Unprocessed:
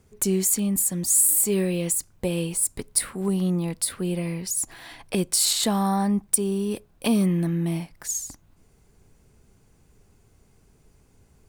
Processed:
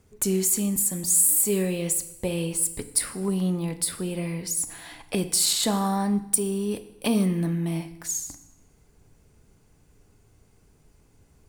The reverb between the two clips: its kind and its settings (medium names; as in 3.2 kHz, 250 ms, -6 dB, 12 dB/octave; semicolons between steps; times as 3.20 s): FDN reverb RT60 0.9 s, low-frequency decay 1.05×, high-frequency decay 0.9×, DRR 9.5 dB; trim -1 dB